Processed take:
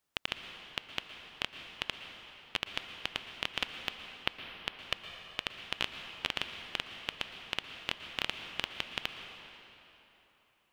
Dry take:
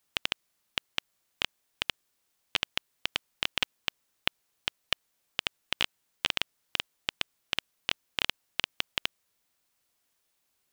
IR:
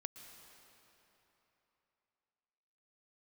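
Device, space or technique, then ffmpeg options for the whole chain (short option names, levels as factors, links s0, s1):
swimming-pool hall: -filter_complex "[1:a]atrim=start_sample=2205[s0];[0:a][s0]afir=irnorm=-1:irlink=0,highshelf=f=3000:g=-7,volume=1.33"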